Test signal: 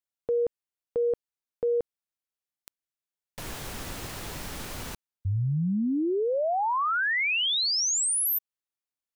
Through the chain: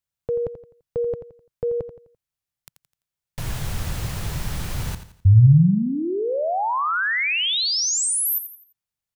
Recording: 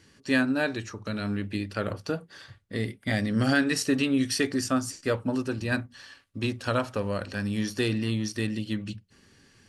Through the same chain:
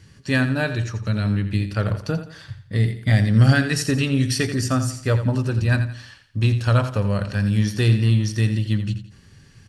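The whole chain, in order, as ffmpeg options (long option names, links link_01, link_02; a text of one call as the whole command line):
ffmpeg -i in.wav -af "lowshelf=frequency=190:width_type=q:width=1.5:gain=9.5,aecho=1:1:85|170|255|340:0.282|0.104|0.0386|0.0143,volume=3.5dB" out.wav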